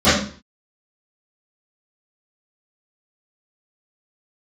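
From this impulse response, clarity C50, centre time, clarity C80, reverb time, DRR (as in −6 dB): 1.0 dB, 54 ms, 6.5 dB, 0.45 s, −20.5 dB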